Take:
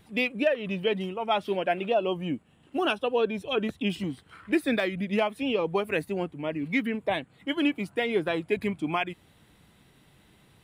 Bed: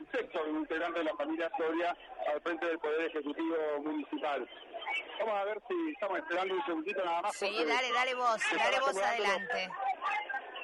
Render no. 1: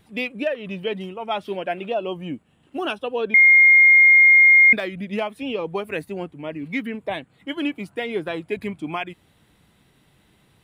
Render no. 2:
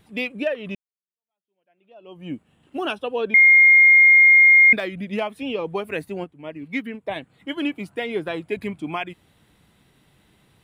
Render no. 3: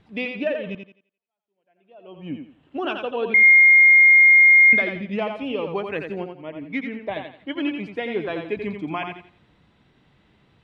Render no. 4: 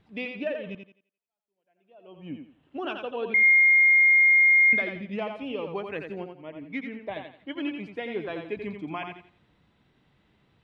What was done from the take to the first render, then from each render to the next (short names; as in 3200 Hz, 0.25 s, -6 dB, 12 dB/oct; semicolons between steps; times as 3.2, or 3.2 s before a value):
3.34–4.73 bleep 2130 Hz -8.5 dBFS
0.75–2.32 fade in exponential; 6.24–7.16 upward expander, over -41 dBFS
air absorption 160 m; on a send: thinning echo 86 ms, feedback 30%, high-pass 200 Hz, level -5.5 dB
gain -6 dB